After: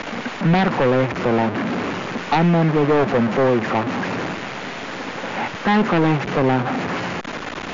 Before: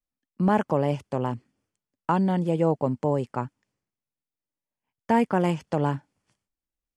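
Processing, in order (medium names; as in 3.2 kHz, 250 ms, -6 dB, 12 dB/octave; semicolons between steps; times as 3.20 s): one-bit delta coder 64 kbps, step -26 dBFS; three-band isolator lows -22 dB, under 160 Hz, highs -21 dB, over 3 kHz; in parallel at -5 dB: sine folder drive 11 dB, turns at -10 dBFS; on the sum: tape speed -10%; brick-wall FIR low-pass 7.2 kHz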